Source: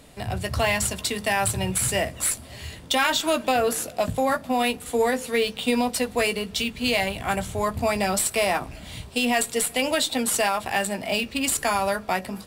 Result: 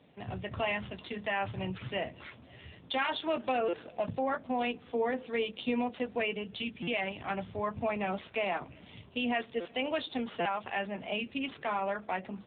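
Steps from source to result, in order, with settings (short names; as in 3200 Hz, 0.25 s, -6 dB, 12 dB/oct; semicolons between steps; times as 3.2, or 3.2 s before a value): stuck buffer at 3.68/6.82/9.6/10.4, samples 256, times 8; gain -8 dB; AMR-NB 7.4 kbps 8000 Hz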